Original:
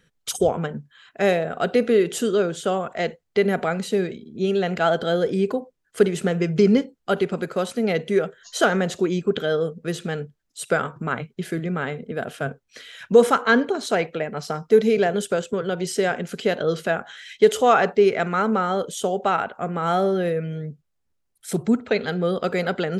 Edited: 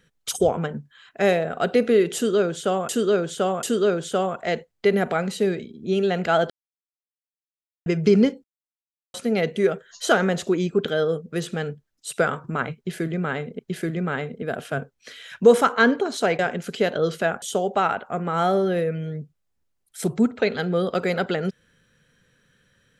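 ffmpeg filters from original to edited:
-filter_complex "[0:a]asplit=10[a][b][c][d][e][f][g][h][i][j];[a]atrim=end=2.892[k];[b]atrim=start=2.148:end=2.892[l];[c]atrim=start=2.148:end=5.02,asetpts=PTS-STARTPTS,afade=t=out:st=2.868:d=0.004:c=hsin[m];[d]atrim=start=5.02:end=6.38,asetpts=PTS-STARTPTS,volume=0[n];[e]atrim=start=6.38:end=6.96,asetpts=PTS-STARTPTS,afade=t=in:d=0.004:c=hsin,afade=t=out:st=0.576:d=0.004:c=hsin[o];[f]atrim=start=6.96:end=7.66,asetpts=PTS-STARTPTS,volume=0[p];[g]atrim=start=7.66:end=12.112,asetpts=PTS-STARTPTS,afade=t=in:d=0.004:c=hsin[q];[h]atrim=start=11.278:end=14.082[r];[i]atrim=start=16.038:end=17.072[s];[j]atrim=start=18.908[t];[k][l]acrossfade=d=0.004:c1=hsin:c2=hsin[u];[m][n][o][p][q]concat=n=5:v=0:a=1[v];[u][v]acrossfade=d=0.004:c1=hsin:c2=hsin[w];[w][r]acrossfade=d=0.004:c1=hsin:c2=hsin[x];[x][s]acrossfade=d=0.004:c1=hsin:c2=hsin[y];[y][t]acrossfade=d=0.004:c1=hsin:c2=hsin"

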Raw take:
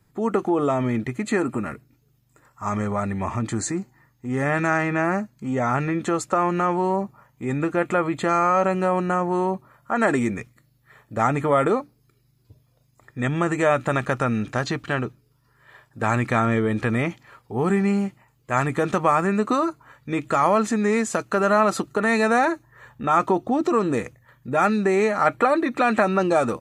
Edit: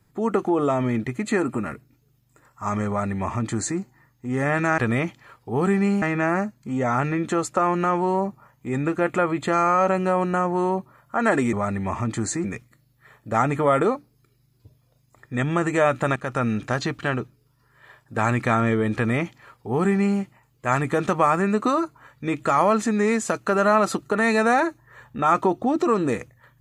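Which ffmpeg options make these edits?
-filter_complex "[0:a]asplit=6[a][b][c][d][e][f];[a]atrim=end=4.782[g];[b]atrim=start=16.808:end=18.052[h];[c]atrim=start=4.778:end=10.292[i];[d]atrim=start=2.878:end=3.792[j];[e]atrim=start=10.288:end=14.01,asetpts=PTS-STARTPTS,afade=t=out:st=3.718:d=0.004:c=hsin:silence=0.251189[k];[f]atrim=start=14.01,asetpts=PTS-STARTPTS,afade=t=in:d=0.28:silence=0.251189[l];[g][h]acrossfade=d=0.004:c1=hsin:c2=hsin[m];[m][i]acrossfade=d=0.004:c1=hsin:c2=hsin[n];[n][j]acrossfade=d=0.004:c1=hsin:c2=hsin[o];[k][l]concat=n=2:v=0:a=1[p];[o][p]acrossfade=d=0.004:c1=hsin:c2=hsin"

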